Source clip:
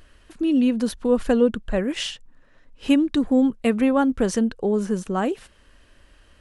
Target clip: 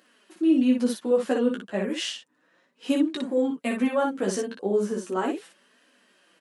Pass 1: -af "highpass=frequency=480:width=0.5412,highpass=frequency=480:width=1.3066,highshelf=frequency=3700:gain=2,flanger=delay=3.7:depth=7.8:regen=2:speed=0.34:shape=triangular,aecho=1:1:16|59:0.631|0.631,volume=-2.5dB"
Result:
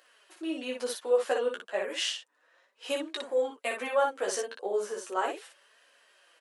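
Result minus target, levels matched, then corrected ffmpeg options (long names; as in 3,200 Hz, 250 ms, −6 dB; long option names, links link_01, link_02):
250 Hz band −12.0 dB
-af "highpass=frequency=210:width=0.5412,highpass=frequency=210:width=1.3066,highshelf=frequency=3700:gain=2,flanger=delay=3.7:depth=7.8:regen=2:speed=0.34:shape=triangular,aecho=1:1:16|59:0.631|0.631,volume=-2.5dB"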